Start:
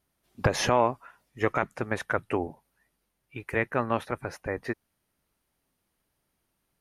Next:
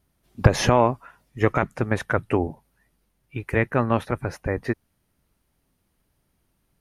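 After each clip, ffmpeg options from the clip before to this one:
-af "lowshelf=f=250:g=9.5,volume=3dB"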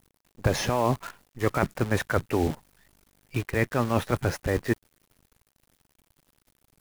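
-af "areverse,acompressor=threshold=-27dB:ratio=6,areverse,acrusher=bits=8:dc=4:mix=0:aa=0.000001,volume=6dB"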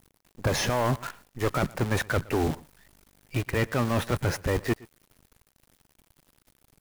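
-af "asoftclip=type=tanh:threshold=-21.5dB,aecho=1:1:118:0.075,volume=3dB"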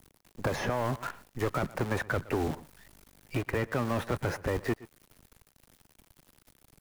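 -filter_complex "[0:a]acrossover=split=250|2000[a][b][c];[a]acompressor=threshold=-36dB:ratio=4[d];[b]acompressor=threshold=-31dB:ratio=4[e];[c]acompressor=threshold=-48dB:ratio=4[f];[d][e][f]amix=inputs=3:normalize=0,volume=2dB"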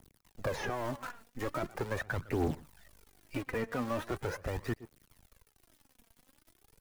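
-af "aphaser=in_gain=1:out_gain=1:delay=4.5:decay=0.53:speed=0.41:type=triangular,volume=-6dB"

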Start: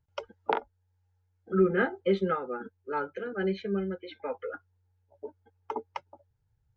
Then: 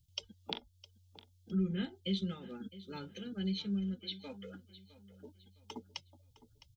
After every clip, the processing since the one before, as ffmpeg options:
-af "firequalizer=gain_entry='entry(190,0);entry(410,-19);entry(1400,-23);entry(3300,8)':delay=0.05:min_phase=1,acompressor=threshold=-48dB:ratio=1.5,aecho=1:1:660|1320|1980:0.141|0.0494|0.0173,volume=5dB"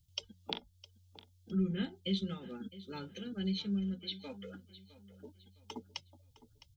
-af "bandreject=f=60:t=h:w=6,bandreject=f=120:t=h:w=6,bandreject=f=180:t=h:w=6,volume=1dB"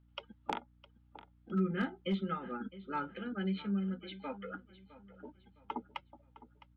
-af "highpass=260,equalizer=f=430:t=q:w=4:g=-6,equalizer=f=880:t=q:w=4:g=4,equalizer=f=1.3k:t=q:w=4:g=9,lowpass=f=2.2k:w=0.5412,lowpass=f=2.2k:w=1.3066,aeval=exprs='val(0)+0.000282*(sin(2*PI*60*n/s)+sin(2*PI*2*60*n/s)/2+sin(2*PI*3*60*n/s)/3+sin(2*PI*4*60*n/s)/4+sin(2*PI*5*60*n/s)/5)':c=same,aeval=exprs='clip(val(0),-1,0.0237)':c=same,volume=6.5dB"

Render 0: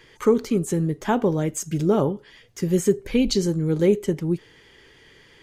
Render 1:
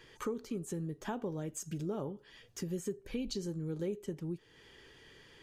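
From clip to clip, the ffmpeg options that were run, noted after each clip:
-af "bandreject=f=2.1k:w=9.5,acompressor=threshold=-35dB:ratio=2.5,volume=-5.5dB"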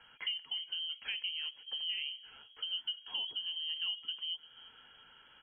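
-filter_complex "[0:a]lowpass=f=2.8k:t=q:w=0.5098,lowpass=f=2.8k:t=q:w=0.6013,lowpass=f=2.8k:t=q:w=0.9,lowpass=f=2.8k:t=q:w=2.563,afreqshift=-3300,asplit=4[a][b][c][d];[b]adelay=345,afreqshift=70,volume=-18.5dB[e];[c]adelay=690,afreqshift=140,volume=-26dB[f];[d]adelay=1035,afreqshift=210,volume=-33.6dB[g];[a][e][f][g]amix=inputs=4:normalize=0,volume=-1dB"

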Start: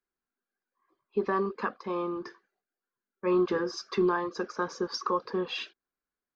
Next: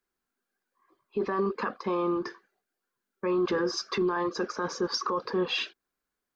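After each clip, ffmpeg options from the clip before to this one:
-af "alimiter=level_in=2dB:limit=-24dB:level=0:latency=1:release=20,volume=-2dB,volume=6dB"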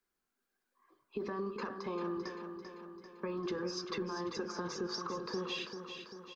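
-filter_complex "[0:a]bandreject=f=51.74:t=h:w=4,bandreject=f=103.48:t=h:w=4,bandreject=f=155.22:t=h:w=4,bandreject=f=206.96:t=h:w=4,bandreject=f=258.7:t=h:w=4,bandreject=f=310.44:t=h:w=4,bandreject=f=362.18:t=h:w=4,bandreject=f=413.92:t=h:w=4,bandreject=f=465.66:t=h:w=4,bandreject=f=517.4:t=h:w=4,bandreject=f=569.14:t=h:w=4,bandreject=f=620.88:t=h:w=4,bandreject=f=672.62:t=h:w=4,bandreject=f=724.36:t=h:w=4,bandreject=f=776.1:t=h:w=4,bandreject=f=827.84:t=h:w=4,bandreject=f=879.58:t=h:w=4,bandreject=f=931.32:t=h:w=4,bandreject=f=983.06:t=h:w=4,bandreject=f=1.0348k:t=h:w=4,bandreject=f=1.08654k:t=h:w=4,bandreject=f=1.13828k:t=h:w=4,bandreject=f=1.19002k:t=h:w=4,bandreject=f=1.24176k:t=h:w=4,bandreject=f=1.2935k:t=h:w=4,bandreject=f=1.34524k:t=h:w=4,bandreject=f=1.39698k:t=h:w=4,bandreject=f=1.44872k:t=h:w=4,bandreject=f=1.50046k:t=h:w=4,bandreject=f=1.5522k:t=h:w=4,bandreject=f=1.60394k:t=h:w=4,bandreject=f=1.65568k:t=h:w=4,bandreject=f=1.70742k:t=h:w=4,bandreject=f=1.75916k:t=h:w=4,bandreject=f=1.8109k:t=h:w=4,bandreject=f=1.86264k:t=h:w=4,acrossover=split=290|5300[a][b][c];[a]acompressor=threshold=-41dB:ratio=4[d];[b]acompressor=threshold=-40dB:ratio=4[e];[c]acompressor=threshold=-49dB:ratio=4[f];[d][e][f]amix=inputs=3:normalize=0,aecho=1:1:392|784|1176|1568|1960|2352|2744:0.398|0.227|0.129|0.0737|0.042|0.024|0.0137,volume=-1dB"

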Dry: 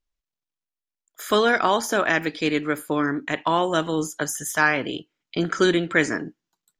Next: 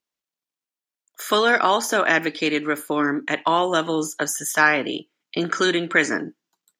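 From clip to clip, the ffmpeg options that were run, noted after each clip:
-filter_complex "[0:a]highpass=190,acrossover=split=800|4300[a][b][c];[a]alimiter=limit=-18dB:level=0:latency=1:release=124[d];[d][b][c]amix=inputs=3:normalize=0,volume=3dB"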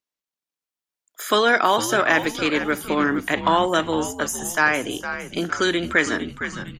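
-filter_complex "[0:a]asplit=2[a][b];[b]asplit=4[c][d][e][f];[c]adelay=459,afreqshift=-100,volume=-10.5dB[g];[d]adelay=918,afreqshift=-200,volume=-18.9dB[h];[e]adelay=1377,afreqshift=-300,volume=-27.3dB[i];[f]adelay=1836,afreqshift=-400,volume=-35.7dB[j];[g][h][i][j]amix=inputs=4:normalize=0[k];[a][k]amix=inputs=2:normalize=0,dynaudnorm=f=140:g=11:m=11.5dB,volume=-3.5dB"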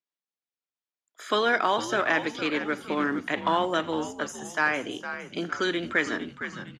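-filter_complex "[0:a]acrusher=bits=7:mode=log:mix=0:aa=0.000001,highpass=130,lowpass=5.3k,asplit=3[a][b][c];[b]adelay=84,afreqshift=-53,volume=-22dB[d];[c]adelay=168,afreqshift=-106,volume=-31.9dB[e];[a][d][e]amix=inputs=3:normalize=0,volume=-6dB"

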